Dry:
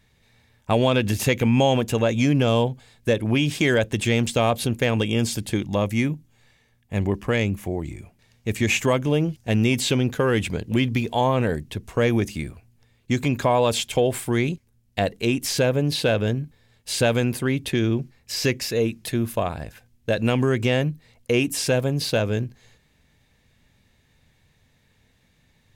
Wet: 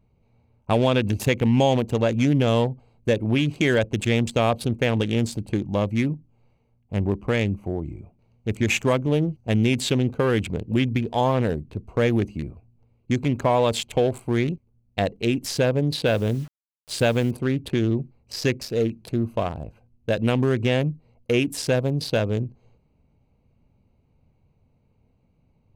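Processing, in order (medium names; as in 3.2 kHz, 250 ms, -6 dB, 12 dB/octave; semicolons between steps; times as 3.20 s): local Wiener filter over 25 samples; 16.06–17.31 s: word length cut 8-bit, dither none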